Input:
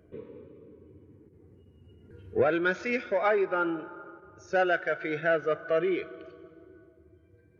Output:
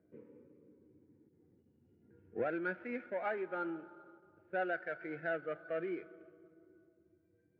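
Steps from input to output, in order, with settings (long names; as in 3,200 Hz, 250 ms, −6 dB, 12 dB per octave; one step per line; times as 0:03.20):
running median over 15 samples
loudspeaker in its box 180–2,400 Hz, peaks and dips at 420 Hz −8 dB, 630 Hz −4 dB, 1,100 Hz −10 dB
one half of a high-frequency compander decoder only
level −7 dB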